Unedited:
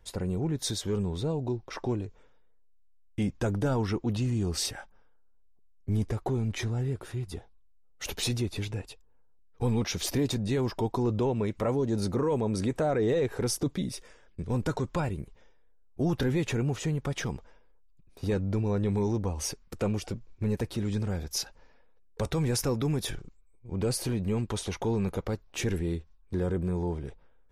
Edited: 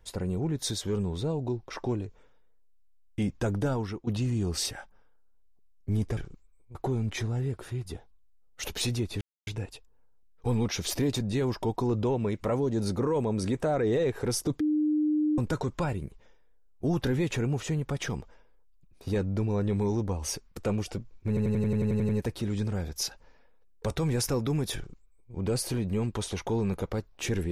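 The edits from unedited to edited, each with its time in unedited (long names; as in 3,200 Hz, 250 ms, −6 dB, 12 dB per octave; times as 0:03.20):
0:03.63–0:04.07: fade out, to −12.5 dB
0:08.63: splice in silence 0.26 s
0:13.76–0:14.54: beep over 303 Hz −22.5 dBFS
0:20.44: stutter 0.09 s, 10 plays
0:23.11–0:23.69: duplicate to 0:06.17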